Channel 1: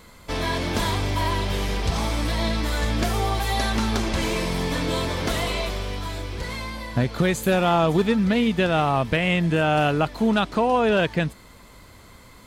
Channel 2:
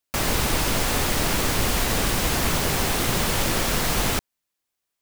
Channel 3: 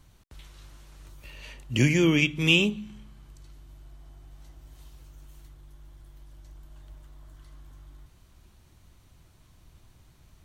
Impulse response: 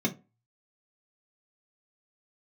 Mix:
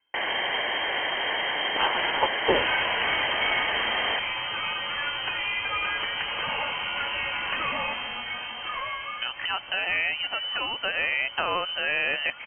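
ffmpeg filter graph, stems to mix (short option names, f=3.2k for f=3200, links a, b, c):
-filter_complex "[0:a]acompressor=threshold=-22dB:ratio=6,adelay=2250,volume=-1.5dB[a];[1:a]aecho=1:1:0.8:0.62,volume=-5.5dB[b];[2:a]aecho=1:1:1.8:0.91,aeval=exprs='0.473*(cos(1*acos(clip(val(0)/0.473,-1,1)))-cos(1*PI/2))+0.0841*(cos(7*acos(clip(val(0)/0.473,-1,1)))-cos(7*PI/2))':c=same,volume=-5dB[c];[a][b][c]amix=inputs=3:normalize=0,tiltshelf=f=650:g=-7.5,lowpass=f=2.7k:t=q:w=0.5098,lowpass=f=2.7k:t=q:w=0.6013,lowpass=f=2.7k:t=q:w=0.9,lowpass=f=2.7k:t=q:w=2.563,afreqshift=-3200"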